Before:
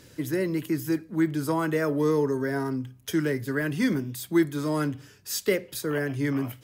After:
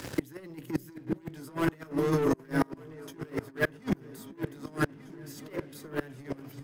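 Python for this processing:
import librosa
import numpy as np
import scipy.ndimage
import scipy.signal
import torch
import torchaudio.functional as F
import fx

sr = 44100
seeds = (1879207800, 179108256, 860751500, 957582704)

y = fx.hum_notches(x, sr, base_hz=60, count=9)
y = fx.doubler(y, sr, ms=18.0, db=-4, at=(1.23, 3.83))
y = fx.rev_spring(y, sr, rt60_s=2.3, pass_ms=(45, 54), chirp_ms=50, drr_db=18.5)
y = fx.leveller(y, sr, passes=3)
y = fx.echo_opening(y, sr, ms=395, hz=200, octaves=2, feedback_pct=70, wet_db=-3)
y = fx.over_compress(y, sr, threshold_db=-19.0, ratio=-0.5)
y = fx.gate_flip(y, sr, shuts_db=-13.0, range_db=-30)
y = fx.band_squash(y, sr, depth_pct=40)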